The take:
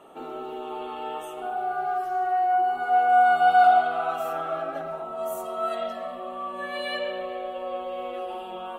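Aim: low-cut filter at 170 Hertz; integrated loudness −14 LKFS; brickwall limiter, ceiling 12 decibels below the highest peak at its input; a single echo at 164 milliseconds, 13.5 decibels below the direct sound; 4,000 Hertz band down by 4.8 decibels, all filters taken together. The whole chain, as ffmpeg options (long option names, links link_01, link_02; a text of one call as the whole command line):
ffmpeg -i in.wav -af "highpass=170,equalizer=frequency=4000:width_type=o:gain=-7.5,alimiter=limit=-21dB:level=0:latency=1,aecho=1:1:164:0.211,volume=15.5dB" out.wav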